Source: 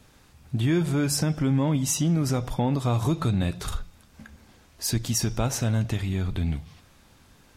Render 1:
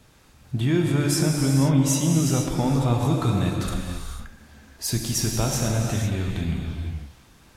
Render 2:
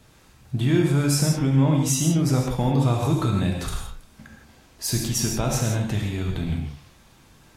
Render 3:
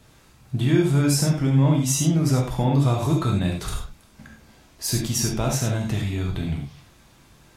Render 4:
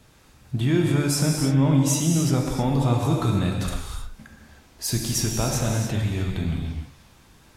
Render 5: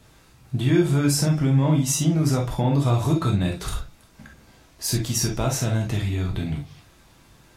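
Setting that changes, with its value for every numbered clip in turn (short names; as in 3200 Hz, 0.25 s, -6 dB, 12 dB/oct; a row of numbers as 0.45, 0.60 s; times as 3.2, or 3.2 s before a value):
non-linear reverb, gate: 520, 190, 120, 340, 80 ms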